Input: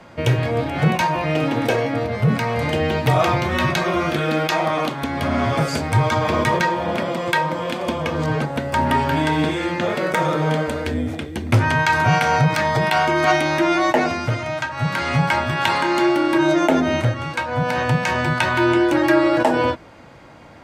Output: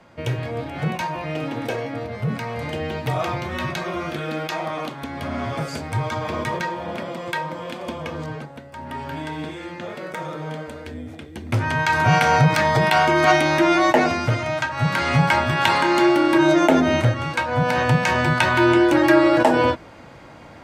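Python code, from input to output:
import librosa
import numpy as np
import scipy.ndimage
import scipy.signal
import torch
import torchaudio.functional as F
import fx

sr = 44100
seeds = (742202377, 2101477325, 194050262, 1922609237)

y = fx.gain(x, sr, db=fx.line((8.14, -7.0), (8.74, -18.0), (9.07, -11.0), (11.06, -11.0), (12.2, 1.0)))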